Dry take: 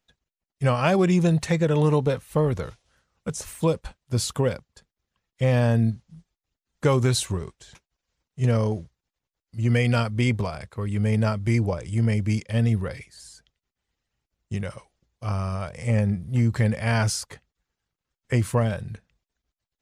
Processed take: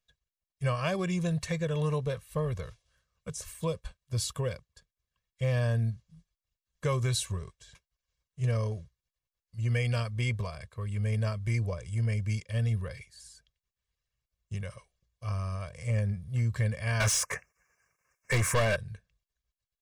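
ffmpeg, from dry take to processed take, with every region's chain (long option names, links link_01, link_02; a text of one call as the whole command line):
ffmpeg -i in.wav -filter_complex "[0:a]asettb=1/sr,asplit=3[link_01][link_02][link_03];[link_01]atrim=end=17.004[link_04];[link_02]atrim=start=17:end=18.76,asetpts=PTS-STARTPTS,afade=type=in:duration=0.004:curve=qsin,afade=type=out:start_time=1.756:duration=0.004:curve=qsin,asuperstop=centerf=3700:order=8:qfactor=1.3,asplit=2[link_05][link_06];[link_06]highpass=frequency=720:poles=1,volume=29dB,asoftclip=type=tanh:threshold=-10.5dB[link_07];[link_05][link_07]amix=inputs=2:normalize=0,lowpass=frequency=4600:poles=1,volume=-6dB[link_08];[link_03]atrim=start=18.756[link_09];[link_04][link_08]acrossfade=duration=0.004:curve1=hsin:curve2=qsin[link_10];[link_10][link_09]acrossfade=duration=0.004:curve1=qsin:curve2=hsin,equalizer=frequency=480:width_type=o:width=2.6:gain=-6,aecho=1:1:1.8:0.63,volume=-7dB" out.wav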